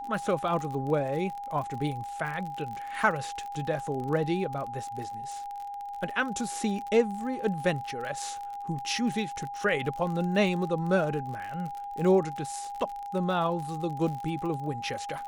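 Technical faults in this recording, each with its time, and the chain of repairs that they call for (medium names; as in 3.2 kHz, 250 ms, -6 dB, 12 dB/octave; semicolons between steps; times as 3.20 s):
crackle 43 per s -34 dBFS
whine 810 Hz -35 dBFS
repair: de-click; band-stop 810 Hz, Q 30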